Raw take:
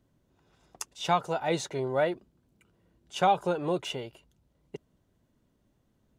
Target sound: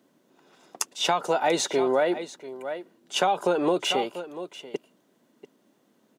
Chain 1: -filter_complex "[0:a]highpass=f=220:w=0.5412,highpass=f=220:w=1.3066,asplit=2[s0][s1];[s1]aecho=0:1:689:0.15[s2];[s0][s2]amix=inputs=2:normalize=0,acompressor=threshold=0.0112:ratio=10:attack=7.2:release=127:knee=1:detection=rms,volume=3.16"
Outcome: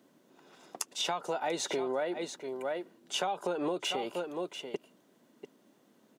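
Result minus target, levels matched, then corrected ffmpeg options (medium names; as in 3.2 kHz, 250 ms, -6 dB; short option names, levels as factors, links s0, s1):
compression: peak gain reduction +10 dB
-filter_complex "[0:a]highpass=f=220:w=0.5412,highpass=f=220:w=1.3066,asplit=2[s0][s1];[s1]aecho=0:1:689:0.15[s2];[s0][s2]amix=inputs=2:normalize=0,acompressor=threshold=0.0398:ratio=10:attack=7.2:release=127:knee=1:detection=rms,volume=3.16"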